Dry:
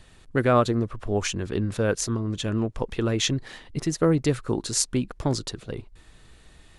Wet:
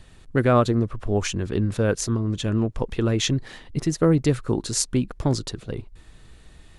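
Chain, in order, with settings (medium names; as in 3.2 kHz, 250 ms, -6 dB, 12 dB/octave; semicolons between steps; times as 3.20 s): bass shelf 320 Hz +4.5 dB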